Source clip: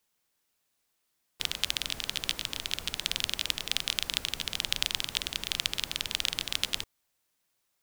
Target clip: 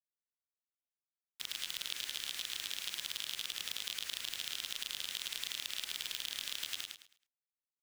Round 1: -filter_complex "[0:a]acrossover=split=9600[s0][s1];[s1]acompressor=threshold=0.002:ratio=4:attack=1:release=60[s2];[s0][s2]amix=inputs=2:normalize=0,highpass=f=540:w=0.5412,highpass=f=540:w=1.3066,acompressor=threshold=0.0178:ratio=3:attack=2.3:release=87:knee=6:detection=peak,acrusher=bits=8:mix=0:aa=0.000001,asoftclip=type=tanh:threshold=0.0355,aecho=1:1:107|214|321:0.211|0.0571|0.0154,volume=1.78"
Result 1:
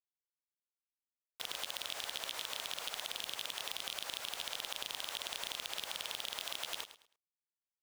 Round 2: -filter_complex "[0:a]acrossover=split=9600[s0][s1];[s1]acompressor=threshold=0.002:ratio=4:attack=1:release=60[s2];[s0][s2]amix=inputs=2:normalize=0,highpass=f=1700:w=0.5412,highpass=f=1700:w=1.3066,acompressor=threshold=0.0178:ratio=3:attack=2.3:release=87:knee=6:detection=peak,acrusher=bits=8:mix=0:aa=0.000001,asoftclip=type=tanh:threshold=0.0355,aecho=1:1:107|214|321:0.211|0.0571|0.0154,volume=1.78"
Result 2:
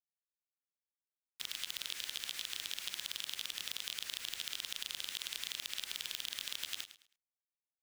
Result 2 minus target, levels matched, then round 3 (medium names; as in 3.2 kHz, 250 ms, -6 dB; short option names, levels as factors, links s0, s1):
echo-to-direct -9 dB
-filter_complex "[0:a]acrossover=split=9600[s0][s1];[s1]acompressor=threshold=0.002:ratio=4:attack=1:release=60[s2];[s0][s2]amix=inputs=2:normalize=0,highpass=f=1700:w=0.5412,highpass=f=1700:w=1.3066,acompressor=threshold=0.0178:ratio=3:attack=2.3:release=87:knee=6:detection=peak,acrusher=bits=8:mix=0:aa=0.000001,asoftclip=type=tanh:threshold=0.0355,aecho=1:1:107|214|321|428:0.596|0.161|0.0434|0.0117,volume=1.78"